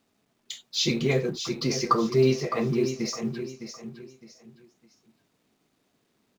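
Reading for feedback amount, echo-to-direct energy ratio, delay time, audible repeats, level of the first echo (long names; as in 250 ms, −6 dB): 30%, −9.0 dB, 610 ms, 3, −9.5 dB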